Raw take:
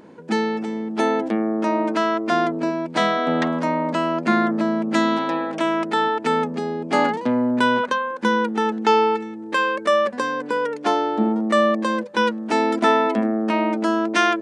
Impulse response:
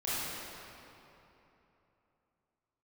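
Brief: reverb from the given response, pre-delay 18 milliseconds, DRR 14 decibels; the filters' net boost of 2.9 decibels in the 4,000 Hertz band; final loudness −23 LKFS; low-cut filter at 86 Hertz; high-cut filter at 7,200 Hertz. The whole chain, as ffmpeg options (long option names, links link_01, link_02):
-filter_complex "[0:a]highpass=86,lowpass=7200,equalizer=frequency=4000:width_type=o:gain=4,asplit=2[link_01][link_02];[1:a]atrim=start_sample=2205,adelay=18[link_03];[link_02][link_03]afir=irnorm=-1:irlink=0,volume=-21.5dB[link_04];[link_01][link_04]amix=inputs=2:normalize=0,volume=-2.5dB"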